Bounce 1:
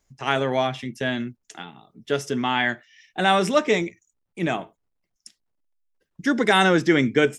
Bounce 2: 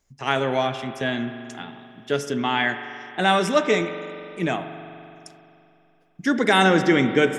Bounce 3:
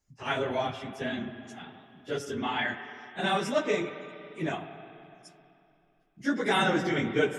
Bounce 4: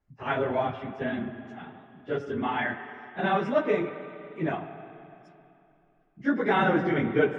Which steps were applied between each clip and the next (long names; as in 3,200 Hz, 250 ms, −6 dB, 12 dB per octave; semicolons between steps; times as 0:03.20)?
spring reverb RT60 2.9 s, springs 42 ms, chirp 40 ms, DRR 9 dB
random phases in long frames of 50 ms; level −8 dB
low-pass filter 1,900 Hz 12 dB per octave; level +3 dB